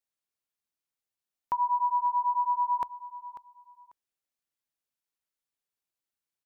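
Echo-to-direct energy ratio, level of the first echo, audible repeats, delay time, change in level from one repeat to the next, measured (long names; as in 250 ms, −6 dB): −15.0 dB, −15.0 dB, 2, 543 ms, −13.0 dB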